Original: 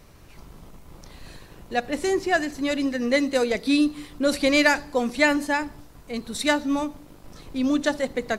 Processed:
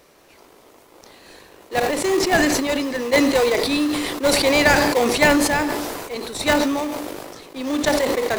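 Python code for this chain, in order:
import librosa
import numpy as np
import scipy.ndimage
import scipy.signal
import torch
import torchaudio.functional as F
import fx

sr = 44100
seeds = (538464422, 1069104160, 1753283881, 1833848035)

p1 = scipy.signal.sosfilt(scipy.signal.butter(4, 350.0, 'highpass', fs=sr, output='sos'), x)
p2 = fx.sample_hold(p1, sr, seeds[0], rate_hz=1500.0, jitter_pct=20)
p3 = p1 + (p2 * 10.0 ** (-4.5 / 20.0))
p4 = fx.sustainer(p3, sr, db_per_s=29.0)
y = p4 * 10.0 ** (1.5 / 20.0)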